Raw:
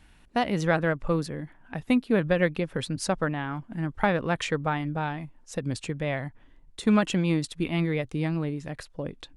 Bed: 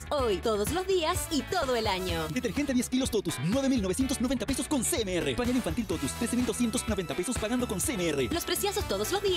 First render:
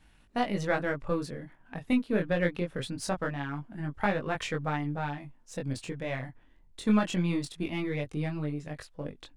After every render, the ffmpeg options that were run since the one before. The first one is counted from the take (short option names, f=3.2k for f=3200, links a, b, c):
-af "aeval=exprs='if(lt(val(0),0),0.708*val(0),val(0))':c=same,flanger=delay=20:depth=3.4:speed=0.23"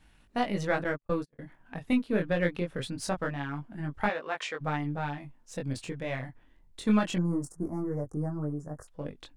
-filter_complex "[0:a]asettb=1/sr,asplit=3[a][b][c];[a]atrim=end=0.844[d];[b]atrim=start=0.84:end=1.39,asetpts=PTS-STARTPTS,afade=t=in:d=0.004:c=qsin,afade=t=out:st=0.546:d=0.004:c=qsin,agate=range=-42dB:threshold=-34dB:ratio=16:release=100:detection=peak[e];[c]atrim=start=1.386[f];[d][e]acrossfade=d=0.004:c1=hsin:c2=qsin[g];[g][f]acrossfade=d=0.004:c1=qsin:c2=hsin,asplit=3[h][i][j];[h]afade=t=out:st=4.08:d=0.02[k];[i]highpass=500,lowpass=7.4k,afade=t=in:st=4.08:d=0.02,afade=t=out:st=4.6:d=0.02[l];[j]afade=t=in:st=4.6:d=0.02[m];[k][l][m]amix=inputs=3:normalize=0,asettb=1/sr,asplit=3[n][o][p];[n]atrim=end=7.184[q];[o]atrim=start=7.18:end=8.88,asetpts=PTS-STARTPTS,afade=t=in:d=0.004:c=qsin,afade=t=out:st=1.696:d=0.004:c=qsin,asuperstop=centerf=3000:order=8:qfactor=0.63[r];[p]atrim=start=8.876[s];[q][r]acrossfade=d=0.004:c1=hsin:c2=qsin[t];[t][s]acrossfade=d=0.004:c1=qsin:c2=hsin"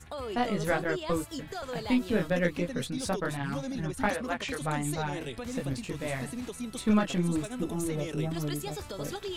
-filter_complex "[1:a]volume=-9.5dB[a];[0:a][a]amix=inputs=2:normalize=0"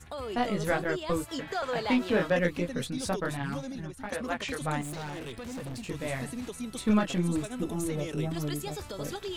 -filter_complex "[0:a]asettb=1/sr,asplit=3[a][b][c];[a]atrim=end=1.284[d];[b]atrim=start=1.28:end=2.39,asetpts=PTS-STARTPTS,afade=t=in:d=0.004:c=qsin,afade=t=out:st=1.106:d=0.004:c=qsin,asplit=2[e][f];[f]highpass=f=720:p=1,volume=15dB,asoftclip=type=tanh:threshold=-14.5dB[g];[e][g]amix=inputs=2:normalize=0,lowpass=f=2.2k:p=1,volume=-6dB[h];[c]atrim=start=2.386[i];[d][h]acrossfade=d=0.004:c1=hsin:c2=qsin[j];[j][i]acrossfade=d=0.004:c1=qsin:c2=hsin,asettb=1/sr,asplit=3[k][l][m];[k]atrim=end=4.814[n];[l]atrim=start=4.81:end=5.86,asetpts=PTS-STARTPTS,afade=t=in:d=0.004:c=qsin,afade=t=out:st=1.046:d=0.004:c=qsin,asoftclip=type=hard:threshold=-35.5dB[o];[m]atrim=start=5.856[p];[n][o]acrossfade=d=0.004:c1=hsin:c2=qsin[q];[q][p]acrossfade=d=0.004:c1=qsin:c2=hsin,asplit=2[r][s];[r]atrim=end=4.12,asetpts=PTS-STARTPTS,afade=t=out:st=3.46:d=0.66:silence=0.199526[t];[s]atrim=start=4.12,asetpts=PTS-STARTPTS,afade=t=in:d=0.004:c=hsin:silence=0.199526[u];[t][u]concat=n=2:v=0:a=1"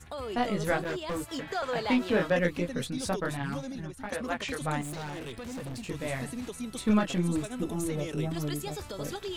-filter_complex "[0:a]asettb=1/sr,asplit=3[a][b][c];[a]atrim=end=0.834[d];[b]atrim=start=0.83:end=1.52,asetpts=PTS-STARTPTS,afade=t=in:d=0.004:c=qsin,afade=t=out:st=0.686:d=0.004:c=qsin,asoftclip=type=hard:threshold=-29.5dB[e];[c]atrim=start=1.516[f];[d][e]acrossfade=d=0.004:c1=hsin:c2=qsin[g];[g][f]acrossfade=d=0.004:c1=qsin:c2=hsin"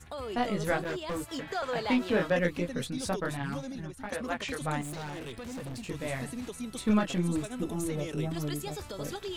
-af "volume=-1dB"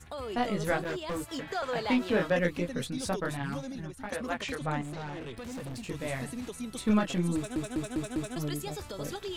-filter_complex "[0:a]asettb=1/sr,asplit=3[a][b][c];[a]atrim=end=4.554[d];[b]atrim=start=4.55:end=5.37,asetpts=PTS-STARTPTS,afade=t=in:d=0.004:c=qsin,afade=t=out:st=0.816:d=0.004:c=qsin,aemphasis=mode=reproduction:type=50fm[e];[c]atrim=start=5.366[f];[d][e]acrossfade=d=0.004:c1=hsin:c2=qsin[g];[g][f]acrossfade=d=0.004:c1=qsin:c2=hsin,asplit=6[h][i][j][k][l][m];[h]atrim=end=7.562[n];[i]atrim=start=7.358:end=7.562[o];[j]atrim=start=7.358:end=7.562[p];[k]atrim=start=7.358:end=7.562[q];[l]atrim=start=7.358:end=7.562[r];[m]atrim=start=8.358[s];[n][o]acrossfade=d=0.004:c1=hsin:c2=hsin[t];[t][p]acrossfade=d=0.004:c1=hsin:c2=hsin[u];[u][q]acrossfade=d=0.004:c1=hsin:c2=hsin[v];[v][r]acrossfade=d=0.004:c1=hsin:c2=hsin[w];[w][s]acrossfade=d=0.004:c1=hsin:c2=hsin"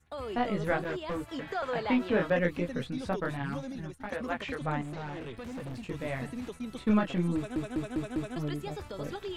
-filter_complex "[0:a]acrossover=split=3300[a][b];[b]acompressor=threshold=-57dB:ratio=4:attack=1:release=60[c];[a][c]amix=inputs=2:normalize=0,agate=range=-16dB:threshold=-44dB:ratio=16:detection=peak"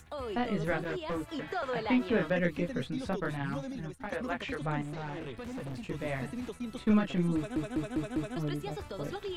-filter_complex "[0:a]acrossover=split=460|1500[a][b][c];[b]alimiter=level_in=4.5dB:limit=-24dB:level=0:latency=1:release=308,volume=-4.5dB[d];[a][d][c]amix=inputs=3:normalize=0,acompressor=mode=upward:threshold=-45dB:ratio=2.5"